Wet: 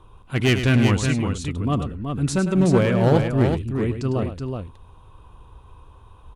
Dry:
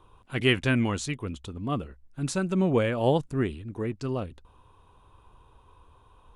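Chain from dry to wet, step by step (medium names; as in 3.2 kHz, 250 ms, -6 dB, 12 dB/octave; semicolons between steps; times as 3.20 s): bass shelf 170 Hz +7.5 dB; one-sided clip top -21 dBFS, bottom -14 dBFS; on a send: multi-tap echo 103/374 ms -9.5/-5.5 dB; on the sum: trim +4 dB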